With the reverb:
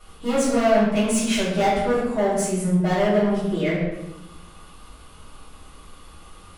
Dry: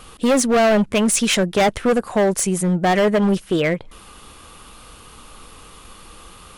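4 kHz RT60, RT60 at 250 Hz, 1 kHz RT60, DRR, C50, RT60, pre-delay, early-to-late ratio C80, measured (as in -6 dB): 0.65 s, 1.3 s, 0.90 s, -11.0 dB, 1.0 dB, 0.90 s, 3 ms, 3.5 dB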